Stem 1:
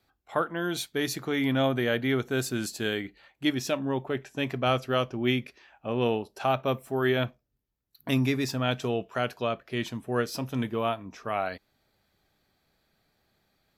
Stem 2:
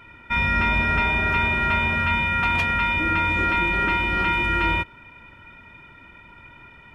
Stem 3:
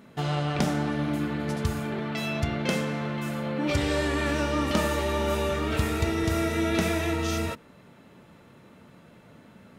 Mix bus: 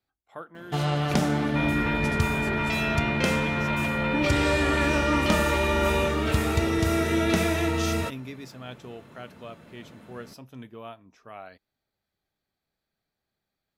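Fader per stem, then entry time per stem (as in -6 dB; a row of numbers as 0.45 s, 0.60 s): -13.0 dB, -8.5 dB, +2.0 dB; 0.00 s, 1.25 s, 0.55 s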